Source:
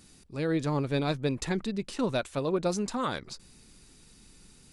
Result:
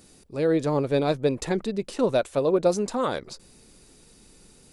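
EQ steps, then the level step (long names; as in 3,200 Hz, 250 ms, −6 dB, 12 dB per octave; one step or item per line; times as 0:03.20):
parametric band 520 Hz +9.5 dB 1.4 octaves
high-shelf EQ 8,700 Hz +5.5 dB
0.0 dB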